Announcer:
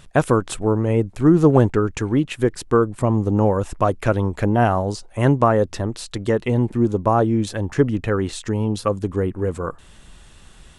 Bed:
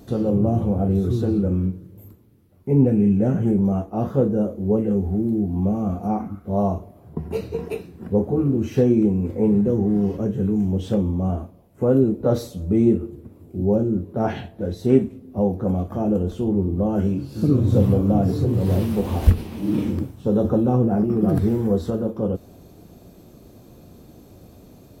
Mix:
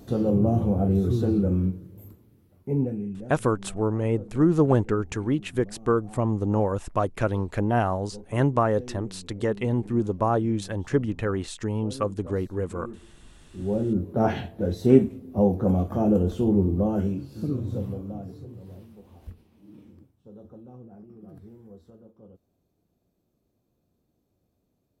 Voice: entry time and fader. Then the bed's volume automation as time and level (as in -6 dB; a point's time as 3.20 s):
3.15 s, -6.0 dB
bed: 2.52 s -2 dB
3.39 s -23.5 dB
13.05 s -23.5 dB
14.03 s 0 dB
16.64 s 0 dB
18.99 s -27.5 dB